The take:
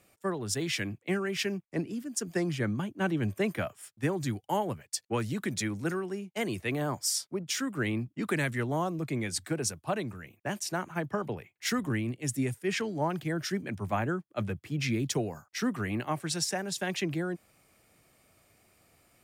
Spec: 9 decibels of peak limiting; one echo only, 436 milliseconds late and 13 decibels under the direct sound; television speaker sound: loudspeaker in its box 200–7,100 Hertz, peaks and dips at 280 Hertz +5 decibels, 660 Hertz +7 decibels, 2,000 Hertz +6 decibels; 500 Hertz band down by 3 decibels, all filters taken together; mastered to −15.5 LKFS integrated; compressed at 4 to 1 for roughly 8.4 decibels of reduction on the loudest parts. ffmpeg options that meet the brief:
ffmpeg -i in.wav -af "equalizer=frequency=500:width_type=o:gain=-8,acompressor=threshold=-37dB:ratio=4,alimiter=level_in=9dB:limit=-24dB:level=0:latency=1,volume=-9dB,highpass=frequency=200:width=0.5412,highpass=frequency=200:width=1.3066,equalizer=frequency=280:width_type=q:width=4:gain=5,equalizer=frequency=660:width_type=q:width=4:gain=7,equalizer=frequency=2000:width_type=q:width=4:gain=6,lowpass=frequency=7100:width=0.5412,lowpass=frequency=7100:width=1.3066,aecho=1:1:436:0.224,volume=27dB" out.wav

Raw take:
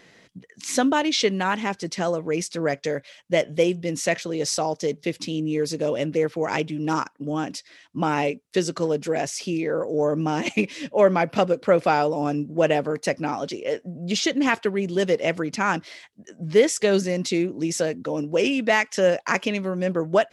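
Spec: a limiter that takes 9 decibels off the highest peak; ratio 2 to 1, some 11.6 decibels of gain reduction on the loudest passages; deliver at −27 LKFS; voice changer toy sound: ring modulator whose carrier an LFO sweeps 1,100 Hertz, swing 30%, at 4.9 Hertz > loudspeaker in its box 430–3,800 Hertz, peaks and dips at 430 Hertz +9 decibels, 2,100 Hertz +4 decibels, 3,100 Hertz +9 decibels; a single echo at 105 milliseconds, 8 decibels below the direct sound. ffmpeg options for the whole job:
ffmpeg -i in.wav -af "acompressor=threshold=-34dB:ratio=2,alimiter=limit=-23.5dB:level=0:latency=1,aecho=1:1:105:0.398,aeval=exprs='val(0)*sin(2*PI*1100*n/s+1100*0.3/4.9*sin(2*PI*4.9*n/s))':channel_layout=same,highpass=430,equalizer=frequency=430:width_type=q:width=4:gain=9,equalizer=frequency=2100:width_type=q:width=4:gain=4,equalizer=frequency=3100:width_type=q:width=4:gain=9,lowpass=frequency=3800:width=0.5412,lowpass=frequency=3800:width=1.3066,volume=7.5dB" out.wav

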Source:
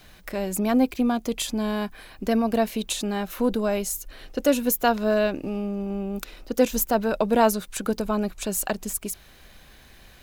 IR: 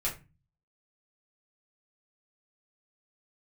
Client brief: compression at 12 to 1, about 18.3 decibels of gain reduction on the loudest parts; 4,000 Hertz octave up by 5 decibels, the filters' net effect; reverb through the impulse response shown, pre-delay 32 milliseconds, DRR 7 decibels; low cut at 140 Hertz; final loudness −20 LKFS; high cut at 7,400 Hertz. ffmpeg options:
-filter_complex "[0:a]highpass=140,lowpass=7400,equalizer=frequency=4000:width_type=o:gain=6.5,acompressor=threshold=-32dB:ratio=12,asplit=2[link_01][link_02];[1:a]atrim=start_sample=2205,adelay=32[link_03];[link_02][link_03]afir=irnorm=-1:irlink=0,volume=-12dB[link_04];[link_01][link_04]amix=inputs=2:normalize=0,volume=16.5dB"

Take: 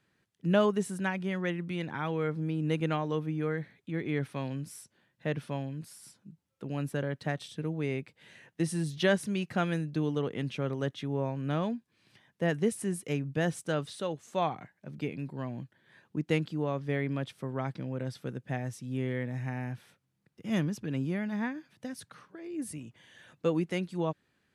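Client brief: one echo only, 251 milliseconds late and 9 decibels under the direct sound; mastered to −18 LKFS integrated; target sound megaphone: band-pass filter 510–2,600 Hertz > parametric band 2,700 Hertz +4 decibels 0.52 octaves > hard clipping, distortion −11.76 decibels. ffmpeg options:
ffmpeg -i in.wav -af "highpass=510,lowpass=2600,equalizer=frequency=2700:width_type=o:width=0.52:gain=4,aecho=1:1:251:0.355,asoftclip=type=hard:threshold=-27.5dB,volume=21.5dB" out.wav

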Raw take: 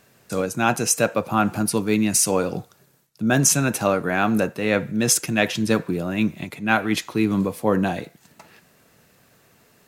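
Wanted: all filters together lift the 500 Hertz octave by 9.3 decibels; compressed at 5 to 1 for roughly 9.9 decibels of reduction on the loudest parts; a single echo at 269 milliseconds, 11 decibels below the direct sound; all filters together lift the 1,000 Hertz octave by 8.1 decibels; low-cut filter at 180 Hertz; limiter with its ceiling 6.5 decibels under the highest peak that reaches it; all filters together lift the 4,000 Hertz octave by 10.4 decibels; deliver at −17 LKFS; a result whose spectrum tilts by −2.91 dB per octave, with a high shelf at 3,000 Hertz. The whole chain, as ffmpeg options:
ffmpeg -i in.wav -af "highpass=180,equalizer=frequency=500:width_type=o:gain=9,equalizer=frequency=1000:width_type=o:gain=6.5,highshelf=frequency=3000:gain=8.5,equalizer=frequency=4000:width_type=o:gain=6,acompressor=threshold=-17dB:ratio=5,alimiter=limit=-10.5dB:level=0:latency=1,aecho=1:1:269:0.282,volume=5.5dB" out.wav

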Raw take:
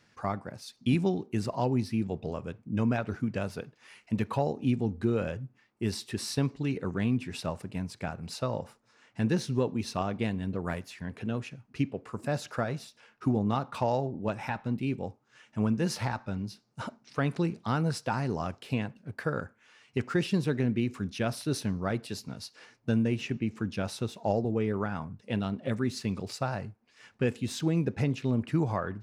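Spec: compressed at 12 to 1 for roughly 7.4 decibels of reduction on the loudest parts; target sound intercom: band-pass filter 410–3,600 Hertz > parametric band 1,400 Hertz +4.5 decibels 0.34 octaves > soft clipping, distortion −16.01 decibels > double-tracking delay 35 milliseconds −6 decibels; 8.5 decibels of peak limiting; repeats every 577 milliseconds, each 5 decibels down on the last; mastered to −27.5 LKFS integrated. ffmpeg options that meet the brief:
ffmpeg -i in.wav -filter_complex "[0:a]acompressor=threshold=-29dB:ratio=12,alimiter=level_in=1dB:limit=-24dB:level=0:latency=1,volume=-1dB,highpass=410,lowpass=3600,equalizer=frequency=1400:width_type=o:width=0.34:gain=4.5,aecho=1:1:577|1154|1731|2308|2885|3462|4039:0.562|0.315|0.176|0.0988|0.0553|0.031|0.0173,asoftclip=threshold=-32.5dB,asplit=2[link_01][link_02];[link_02]adelay=35,volume=-6dB[link_03];[link_01][link_03]amix=inputs=2:normalize=0,volume=14.5dB" out.wav

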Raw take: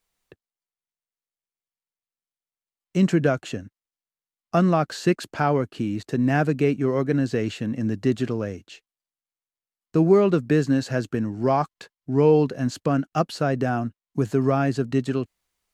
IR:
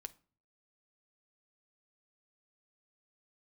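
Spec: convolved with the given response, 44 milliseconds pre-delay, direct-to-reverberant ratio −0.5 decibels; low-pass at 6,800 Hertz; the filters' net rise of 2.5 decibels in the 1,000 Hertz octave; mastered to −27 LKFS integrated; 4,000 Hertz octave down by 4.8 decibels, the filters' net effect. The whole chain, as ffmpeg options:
-filter_complex "[0:a]lowpass=6800,equalizer=frequency=1000:width_type=o:gain=4,equalizer=frequency=4000:width_type=o:gain=-6,asplit=2[link_01][link_02];[1:a]atrim=start_sample=2205,adelay=44[link_03];[link_02][link_03]afir=irnorm=-1:irlink=0,volume=5.5dB[link_04];[link_01][link_04]amix=inputs=2:normalize=0,volume=-7.5dB"

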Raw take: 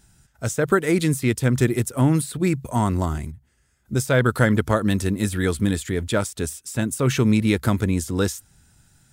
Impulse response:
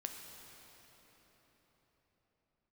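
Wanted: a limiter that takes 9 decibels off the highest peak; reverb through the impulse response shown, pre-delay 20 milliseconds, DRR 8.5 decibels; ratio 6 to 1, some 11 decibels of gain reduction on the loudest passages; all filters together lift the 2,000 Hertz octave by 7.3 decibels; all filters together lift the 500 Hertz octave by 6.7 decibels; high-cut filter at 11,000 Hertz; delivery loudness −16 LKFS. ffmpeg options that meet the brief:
-filter_complex "[0:a]lowpass=11000,equalizer=frequency=500:width_type=o:gain=8,equalizer=frequency=2000:width_type=o:gain=9,acompressor=threshold=-20dB:ratio=6,alimiter=limit=-17.5dB:level=0:latency=1,asplit=2[link_01][link_02];[1:a]atrim=start_sample=2205,adelay=20[link_03];[link_02][link_03]afir=irnorm=-1:irlink=0,volume=-7dB[link_04];[link_01][link_04]amix=inputs=2:normalize=0,volume=12.5dB"

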